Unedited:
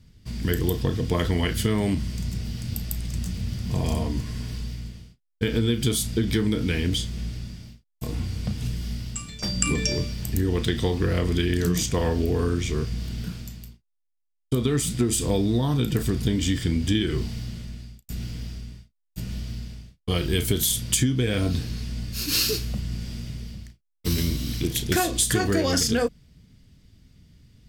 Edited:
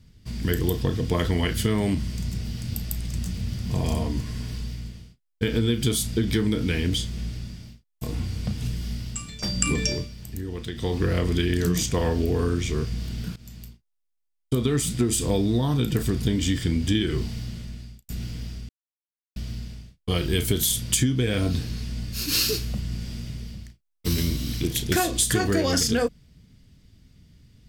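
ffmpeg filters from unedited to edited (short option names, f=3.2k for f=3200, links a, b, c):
-filter_complex "[0:a]asplit=6[a][b][c][d][e][f];[a]atrim=end=10.09,asetpts=PTS-STARTPTS,afade=t=out:st=9.88:d=0.21:silence=0.354813[g];[b]atrim=start=10.09:end=10.75,asetpts=PTS-STARTPTS,volume=-9dB[h];[c]atrim=start=10.75:end=13.36,asetpts=PTS-STARTPTS,afade=t=in:d=0.21:silence=0.354813,afade=t=out:st=2.606:d=0.004:c=hsin:silence=0.11885[i];[d]atrim=start=13.36:end=18.69,asetpts=PTS-STARTPTS,afade=t=in:d=0.26:silence=0.11885,afade=t=out:st=5.326:d=0.004:c=hsin[j];[e]atrim=start=18.69:end=19.36,asetpts=PTS-STARTPTS,volume=0[k];[f]atrim=start=19.36,asetpts=PTS-STARTPTS,afade=t=in:d=0.004:c=hsin[l];[g][h][i][j][k][l]concat=n=6:v=0:a=1"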